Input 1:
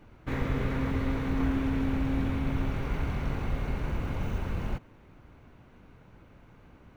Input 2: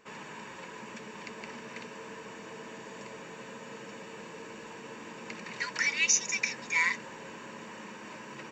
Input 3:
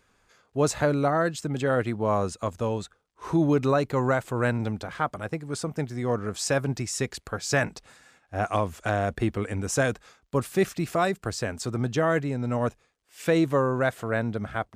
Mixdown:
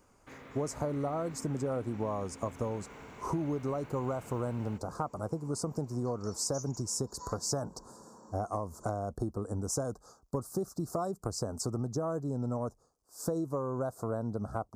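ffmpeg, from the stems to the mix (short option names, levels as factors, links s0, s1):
-filter_complex "[0:a]highpass=f=460:p=1,alimiter=level_in=2.11:limit=0.0631:level=0:latency=1:release=467,volume=0.473,volume=0.316[s0];[1:a]adelay=450,volume=0.376[s1];[2:a]volume=1.19[s2];[s1][s2]amix=inputs=2:normalize=0,asuperstop=centerf=2500:order=8:qfactor=0.67,acompressor=threshold=0.0316:ratio=12,volume=1[s3];[s0][s3]amix=inputs=2:normalize=0"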